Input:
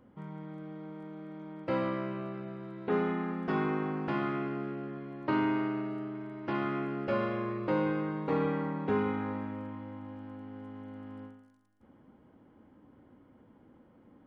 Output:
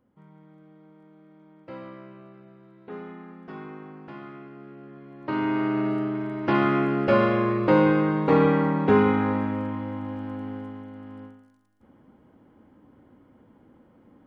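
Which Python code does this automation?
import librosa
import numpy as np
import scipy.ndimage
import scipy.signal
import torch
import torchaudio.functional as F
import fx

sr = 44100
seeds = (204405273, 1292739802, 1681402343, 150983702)

y = fx.gain(x, sr, db=fx.line((4.52, -9.0), (5.18, -1.5), (5.88, 11.0), (10.5, 11.0), (10.9, 3.5)))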